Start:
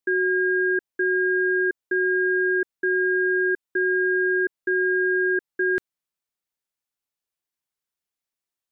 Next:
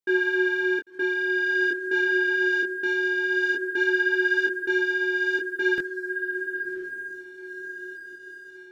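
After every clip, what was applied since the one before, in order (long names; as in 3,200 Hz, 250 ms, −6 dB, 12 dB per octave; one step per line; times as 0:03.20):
feedback delay with all-pass diffusion 1,077 ms, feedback 42%, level −9 dB
leveller curve on the samples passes 1
micro pitch shift up and down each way 17 cents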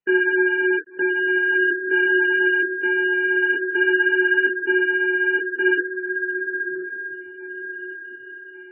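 level +5 dB
MP3 8 kbit/s 22,050 Hz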